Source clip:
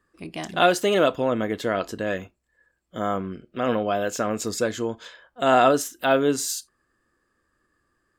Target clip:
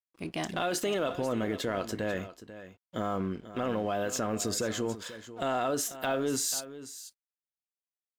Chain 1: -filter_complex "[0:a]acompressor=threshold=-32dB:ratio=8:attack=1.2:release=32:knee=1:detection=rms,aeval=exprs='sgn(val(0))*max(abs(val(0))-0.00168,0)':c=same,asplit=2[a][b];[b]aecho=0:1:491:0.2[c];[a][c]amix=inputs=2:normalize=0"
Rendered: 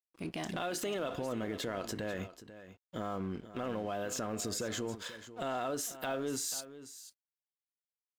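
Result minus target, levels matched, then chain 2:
compressor: peak gain reduction +5.5 dB
-filter_complex "[0:a]acompressor=threshold=-25.5dB:ratio=8:attack=1.2:release=32:knee=1:detection=rms,aeval=exprs='sgn(val(0))*max(abs(val(0))-0.00168,0)':c=same,asplit=2[a][b];[b]aecho=0:1:491:0.2[c];[a][c]amix=inputs=2:normalize=0"

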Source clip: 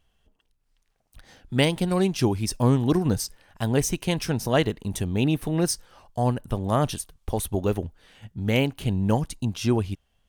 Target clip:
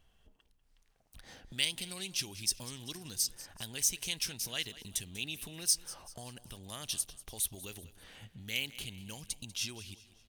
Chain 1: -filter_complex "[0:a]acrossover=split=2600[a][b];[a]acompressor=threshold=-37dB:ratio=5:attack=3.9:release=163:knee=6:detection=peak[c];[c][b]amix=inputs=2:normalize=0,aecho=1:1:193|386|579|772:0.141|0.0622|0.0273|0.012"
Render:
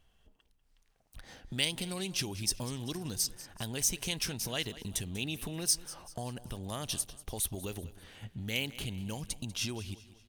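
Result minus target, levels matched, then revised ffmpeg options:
compressor: peak gain reduction -9 dB
-filter_complex "[0:a]acrossover=split=2600[a][b];[a]acompressor=threshold=-48.5dB:ratio=5:attack=3.9:release=163:knee=6:detection=peak[c];[c][b]amix=inputs=2:normalize=0,aecho=1:1:193|386|579|772:0.141|0.0622|0.0273|0.012"

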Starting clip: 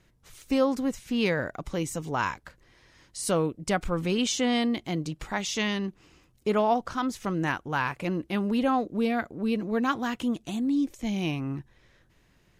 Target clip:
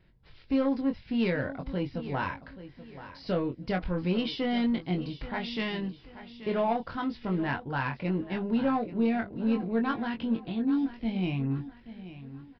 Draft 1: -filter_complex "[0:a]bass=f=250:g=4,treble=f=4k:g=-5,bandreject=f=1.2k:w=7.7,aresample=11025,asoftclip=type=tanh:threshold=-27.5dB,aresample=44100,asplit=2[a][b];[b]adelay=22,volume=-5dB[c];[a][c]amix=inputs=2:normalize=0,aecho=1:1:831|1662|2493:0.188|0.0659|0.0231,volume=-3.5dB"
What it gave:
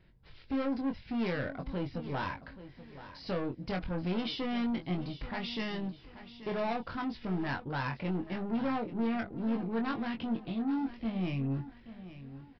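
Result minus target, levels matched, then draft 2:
soft clip: distortion +11 dB
-filter_complex "[0:a]bass=f=250:g=4,treble=f=4k:g=-5,bandreject=f=1.2k:w=7.7,aresample=11025,asoftclip=type=tanh:threshold=-16.5dB,aresample=44100,asplit=2[a][b];[b]adelay=22,volume=-5dB[c];[a][c]amix=inputs=2:normalize=0,aecho=1:1:831|1662|2493:0.188|0.0659|0.0231,volume=-3.5dB"

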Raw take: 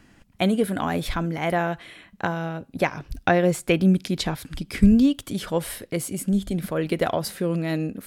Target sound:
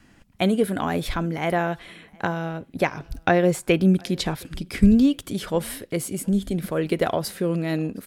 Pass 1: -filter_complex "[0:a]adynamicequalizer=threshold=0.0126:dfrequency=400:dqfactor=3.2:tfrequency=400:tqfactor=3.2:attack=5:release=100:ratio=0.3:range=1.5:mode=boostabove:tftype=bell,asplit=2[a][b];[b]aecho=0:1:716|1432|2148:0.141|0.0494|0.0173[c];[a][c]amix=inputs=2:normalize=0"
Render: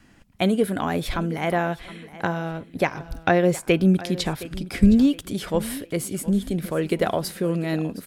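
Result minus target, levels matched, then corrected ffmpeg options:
echo-to-direct +11.5 dB
-filter_complex "[0:a]adynamicequalizer=threshold=0.0126:dfrequency=400:dqfactor=3.2:tfrequency=400:tqfactor=3.2:attack=5:release=100:ratio=0.3:range=1.5:mode=boostabove:tftype=bell,asplit=2[a][b];[b]aecho=0:1:716|1432:0.0376|0.0132[c];[a][c]amix=inputs=2:normalize=0"

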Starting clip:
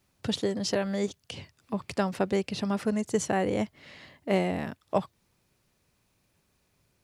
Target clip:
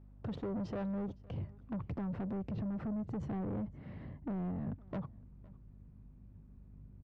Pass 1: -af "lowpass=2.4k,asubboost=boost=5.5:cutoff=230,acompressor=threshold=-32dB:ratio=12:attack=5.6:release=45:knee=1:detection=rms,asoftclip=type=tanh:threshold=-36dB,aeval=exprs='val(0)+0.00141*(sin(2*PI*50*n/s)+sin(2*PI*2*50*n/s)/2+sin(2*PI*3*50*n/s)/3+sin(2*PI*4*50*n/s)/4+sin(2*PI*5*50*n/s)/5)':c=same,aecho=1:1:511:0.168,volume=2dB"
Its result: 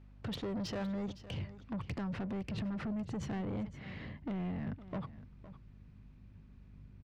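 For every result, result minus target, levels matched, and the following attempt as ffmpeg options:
2000 Hz band +8.0 dB; echo-to-direct +8 dB
-af "lowpass=880,asubboost=boost=5.5:cutoff=230,acompressor=threshold=-32dB:ratio=12:attack=5.6:release=45:knee=1:detection=rms,asoftclip=type=tanh:threshold=-36dB,aeval=exprs='val(0)+0.00141*(sin(2*PI*50*n/s)+sin(2*PI*2*50*n/s)/2+sin(2*PI*3*50*n/s)/3+sin(2*PI*4*50*n/s)/4+sin(2*PI*5*50*n/s)/5)':c=same,aecho=1:1:511:0.168,volume=2dB"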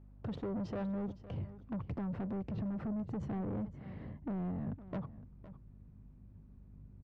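echo-to-direct +8 dB
-af "lowpass=880,asubboost=boost=5.5:cutoff=230,acompressor=threshold=-32dB:ratio=12:attack=5.6:release=45:knee=1:detection=rms,asoftclip=type=tanh:threshold=-36dB,aeval=exprs='val(0)+0.00141*(sin(2*PI*50*n/s)+sin(2*PI*2*50*n/s)/2+sin(2*PI*3*50*n/s)/3+sin(2*PI*4*50*n/s)/4+sin(2*PI*5*50*n/s)/5)':c=same,aecho=1:1:511:0.0668,volume=2dB"

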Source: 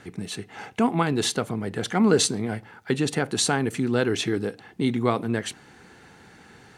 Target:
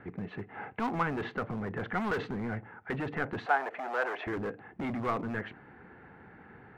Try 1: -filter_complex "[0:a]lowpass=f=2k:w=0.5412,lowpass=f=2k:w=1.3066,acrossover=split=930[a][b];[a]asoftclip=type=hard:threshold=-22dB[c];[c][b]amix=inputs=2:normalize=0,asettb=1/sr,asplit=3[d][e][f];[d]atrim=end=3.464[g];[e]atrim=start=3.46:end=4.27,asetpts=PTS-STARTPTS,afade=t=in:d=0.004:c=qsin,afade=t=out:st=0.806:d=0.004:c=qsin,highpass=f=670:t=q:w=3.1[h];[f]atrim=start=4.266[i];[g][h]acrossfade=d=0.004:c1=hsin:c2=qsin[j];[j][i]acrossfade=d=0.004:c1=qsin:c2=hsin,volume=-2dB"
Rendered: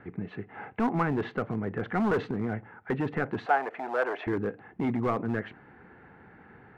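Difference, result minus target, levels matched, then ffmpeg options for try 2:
hard clip: distortion -6 dB
-filter_complex "[0:a]lowpass=f=2k:w=0.5412,lowpass=f=2k:w=1.3066,acrossover=split=930[a][b];[a]asoftclip=type=hard:threshold=-30.5dB[c];[c][b]amix=inputs=2:normalize=0,asettb=1/sr,asplit=3[d][e][f];[d]atrim=end=3.464[g];[e]atrim=start=3.46:end=4.27,asetpts=PTS-STARTPTS,afade=t=in:d=0.004:c=qsin,afade=t=out:st=0.806:d=0.004:c=qsin,highpass=f=670:t=q:w=3.1[h];[f]atrim=start=4.266[i];[g][h]acrossfade=d=0.004:c1=hsin:c2=qsin[j];[j][i]acrossfade=d=0.004:c1=qsin:c2=hsin,volume=-2dB"

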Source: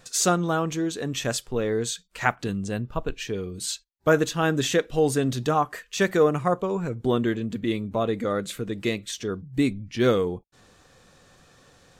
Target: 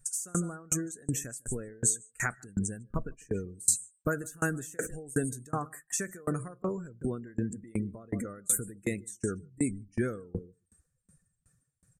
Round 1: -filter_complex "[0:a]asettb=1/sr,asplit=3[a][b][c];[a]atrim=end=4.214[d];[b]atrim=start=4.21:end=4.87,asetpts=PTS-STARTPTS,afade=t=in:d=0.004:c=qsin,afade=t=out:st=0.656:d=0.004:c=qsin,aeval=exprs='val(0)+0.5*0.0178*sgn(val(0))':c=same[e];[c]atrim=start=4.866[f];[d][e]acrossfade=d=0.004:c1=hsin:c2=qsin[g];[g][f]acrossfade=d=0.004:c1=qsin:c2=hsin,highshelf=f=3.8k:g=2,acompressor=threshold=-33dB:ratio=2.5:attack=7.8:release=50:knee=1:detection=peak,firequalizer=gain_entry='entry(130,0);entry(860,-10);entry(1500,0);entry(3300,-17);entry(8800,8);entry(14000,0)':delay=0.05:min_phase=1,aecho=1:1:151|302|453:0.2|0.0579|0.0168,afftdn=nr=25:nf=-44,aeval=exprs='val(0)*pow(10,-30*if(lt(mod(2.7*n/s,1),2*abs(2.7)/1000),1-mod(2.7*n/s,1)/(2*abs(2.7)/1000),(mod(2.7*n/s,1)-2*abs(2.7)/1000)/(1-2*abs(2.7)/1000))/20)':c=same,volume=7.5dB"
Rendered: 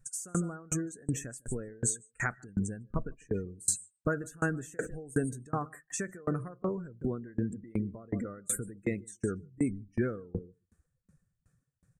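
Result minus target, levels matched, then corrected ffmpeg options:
8000 Hz band -3.0 dB
-filter_complex "[0:a]asettb=1/sr,asplit=3[a][b][c];[a]atrim=end=4.214[d];[b]atrim=start=4.21:end=4.87,asetpts=PTS-STARTPTS,afade=t=in:d=0.004:c=qsin,afade=t=out:st=0.656:d=0.004:c=qsin,aeval=exprs='val(0)+0.5*0.0178*sgn(val(0))':c=same[e];[c]atrim=start=4.866[f];[d][e]acrossfade=d=0.004:c1=hsin:c2=qsin[g];[g][f]acrossfade=d=0.004:c1=qsin:c2=hsin,highshelf=f=3.8k:g=12,acompressor=threshold=-33dB:ratio=2.5:attack=7.8:release=50:knee=1:detection=peak,firequalizer=gain_entry='entry(130,0);entry(860,-10);entry(1500,0);entry(3300,-17);entry(8800,8);entry(14000,0)':delay=0.05:min_phase=1,aecho=1:1:151|302|453:0.2|0.0579|0.0168,afftdn=nr=25:nf=-44,aeval=exprs='val(0)*pow(10,-30*if(lt(mod(2.7*n/s,1),2*abs(2.7)/1000),1-mod(2.7*n/s,1)/(2*abs(2.7)/1000),(mod(2.7*n/s,1)-2*abs(2.7)/1000)/(1-2*abs(2.7)/1000))/20)':c=same,volume=7.5dB"

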